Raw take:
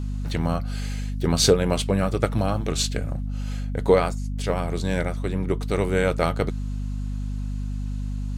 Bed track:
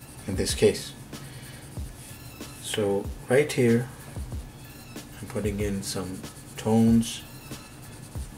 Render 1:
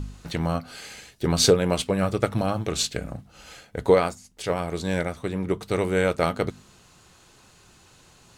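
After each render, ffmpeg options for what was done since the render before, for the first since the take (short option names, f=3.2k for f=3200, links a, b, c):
-af "bandreject=f=50:t=h:w=4,bandreject=f=100:t=h:w=4,bandreject=f=150:t=h:w=4,bandreject=f=200:t=h:w=4,bandreject=f=250:t=h:w=4"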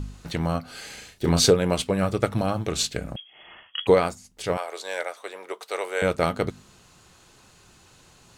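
-filter_complex "[0:a]asettb=1/sr,asplit=3[a][b][c];[a]atrim=end=0.724[d];[b]atrim=start=0.72:end=1.4,asetpts=PTS-STARTPTS,afade=t=in:d=0.004:c=qsin,afade=t=out:st=0.676:d=0.004:c=qsin,asplit=2[e][f];[f]adelay=35,volume=-5.5dB[g];[e][g]amix=inputs=2:normalize=0,atrim=end_sample=29988[h];[c]atrim=start=1.396[i];[d][h]acrossfade=d=0.004:c1=hsin:c2=qsin[j];[j][i]acrossfade=d=0.004:c1=qsin:c2=hsin,asettb=1/sr,asplit=3[k][l][m];[k]atrim=end=3.164[n];[l]atrim=start=3.16:end=3.87,asetpts=PTS-STARTPTS,afade=t=in:d=0.004:c=qsin,afade=t=out:st=0.706:d=0.004:c=qsin,lowpass=f=2.9k:t=q:w=0.5098,lowpass=f=2.9k:t=q:w=0.6013,lowpass=f=2.9k:t=q:w=0.9,lowpass=f=2.9k:t=q:w=2.563,afreqshift=-3400[o];[m]atrim=start=3.866[p];[n][o]acrossfade=d=0.004:c1=hsin:c2=qsin[q];[q][p]acrossfade=d=0.004:c1=qsin:c2=hsin,asettb=1/sr,asplit=3[r][s][t];[r]atrim=end=4.574[u];[s]atrim=start=4.57:end=6.02,asetpts=PTS-STARTPTS,afade=t=in:d=0.004:c=qsin,afade=t=out:st=1.446:d=0.004:c=qsin,highpass=f=510:w=0.5412,highpass=f=510:w=1.3066[v];[t]atrim=start=6.016[w];[u][v]acrossfade=d=0.004:c1=hsin:c2=qsin[x];[x][w]acrossfade=d=0.004:c1=qsin:c2=hsin"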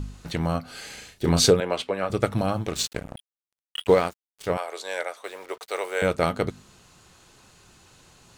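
-filter_complex "[0:a]asettb=1/sr,asplit=3[a][b][c];[a]atrim=end=1.604[d];[b]atrim=start=1.6:end=2.1,asetpts=PTS-STARTPTS,afade=t=in:d=0.004:c=qsin,afade=t=out:st=0.496:d=0.004:c=qsin,acrossover=split=330 4400:gain=0.158 1 0.224[e][f][g];[e][f][g]amix=inputs=3:normalize=0[h];[c]atrim=start=2.096[i];[d][h]acrossfade=d=0.004:c1=hsin:c2=qsin[j];[j][i]acrossfade=d=0.004:c1=qsin:c2=hsin,asettb=1/sr,asplit=3[k][l][m];[k]atrim=end=2.664[n];[l]atrim=start=2.66:end=4.47,asetpts=PTS-STARTPTS,afade=t=in:d=0.004:c=qsin,afade=t=out:st=1.806:d=0.004:c=qsin,aeval=exprs='sgn(val(0))*max(abs(val(0))-0.0158,0)':c=same[o];[m]atrim=start=4.466[p];[n][o]acrossfade=d=0.004:c1=hsin:c2=qsin[q];[q][p]acrossfade=d=0.004:c1=qsin:c2=hsin,asettb=1/sr,asplit=3[r][s][t];[r]atrim=end=5.244[u];[s]atrim=start=5.24:end=6.07,asetpts=PTS-STARTPTS,afade=t=in:d=0.004:c=qsin,afade=t=out:st=0.826:d=0.004:c=qsin,acrusher=bits=7:mix=0:aa=0.5[v];[t]atrim=start=6.066[w];[u][v]acrossfade=d=0.004:c1=hsin:c2=qsin[x];[x][w]acrossfade=d=0.004:c1=qsin:c2=hsin"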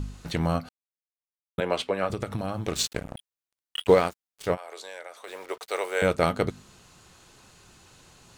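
-filter_complex "[0:a]asettb=1/sr,asplit=3[a][b][c];[a]atrim=end=2.114[d];[b]atrim=start=2.11:end=2.67,asetpts=PTS-STARTPTS,afade=t=in:d=0.004:c=qsin,afade=t=out:st=0.556:d=0.004:c=qsin,acompressor=threshold=-25dB:ratio=12:attack=3.2:release=140:knee=1:detection=peak[e];[c]atrim=start=2.666[f];[d][e]acrossfade=d=0.004:c1=hsin:c2=qsin[g];[g][f]acrossfade=d=0.004:c1=qsin:c2=hsin,asplit=3[h][i][j];[h]afade=t=out:st=4.54:d=0.02[k];[i]acompressor=threshold=-37dB:ratio=5:attack=3.2:release=140:knee=1:detection=peak,afade=t=in:st=4.54:d=0.02,afade=t=out:st=5.27:d=0.02[l];[j]afade=t=in:st=5.27:d=0.02[m];[k][l][m]amix=inputs=3:normalize=0,asplit=3[n][o][p];[n]atrim=end=0.69,asetpts=PTS-STARTPTS,afade=t=out:st=0.686:d=0.004:c=hsin[q];[o]atrim=start=0.69:end=1.58,asetpts=PTS-STARTPTS,volume=0[r];[p]atrim=start=1.58,asetpts=PTS-STARTPTS,afade=t=in:d=0.004:c=hsin[s];[q][r][s]concat=n=3:v=0:a=1"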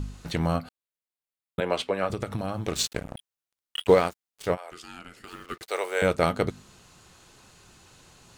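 -filter_complex "[0:a]asettb=1/sr,asplit=3[a][b][c];[a]atrim=end=0.564[d];[b]atrim=start=0.56:end=1.67,asetpts=PTS-STARTPTS,afade=t=in:d=0.004:c=qsin,afade=t=out:st=1.106:d=0.004:c=qsin,equalizer=f=5.9k:t=o:w=0.21:g=-10[e];[c]atrim=start=1.666[f];[d][e]acrossfade=d=0.004:c1=hsin:c2=qsin[g];[g][f]acrossfade=d=0.004:c1=qsin:c2=hsin,asettb=1/sr,asplit=3[h][i][j];[h]atrim=end=4.714[k];[i]atrim=start=4.71:end=5.63,asetpts=PTS-STARTPTS,afade=t=in:d=0.004:c=qsin,afade=t=out:st=0.916:d=0.004:c=qsin,aeval=exprs='val(0)*sin(2*PI*800*n/s)':c=same[l];[j]atrim=start=5.626[m];[k][l]acrossfade=d=0.004:c1=hsin:c2=qsin[n];[n][m]acrossfade=d=0.004:c1=qsin:c2=hsin"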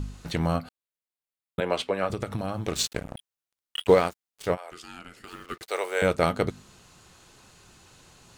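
-af anull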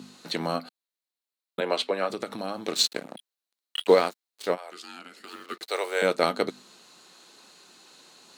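-af "highpass=f=220:w=0.5412,highpass=f=220:w=1.3066,equalizer=f=4.1k:t=o:w=0.3:g=9"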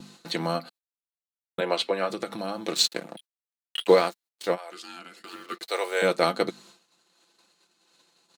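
-af "agate=range=-22dB:threshold=-51dB:ratio=16:detection=peak,aecho=1:1:5.9:0.45"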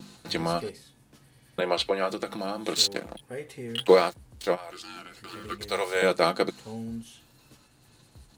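-filter_complex "[1:a]volume=-16.5dB[a];[0:a][a]amix=inputs=2:normalize=0"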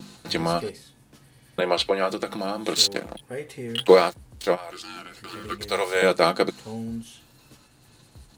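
-af "volume=3.5dB"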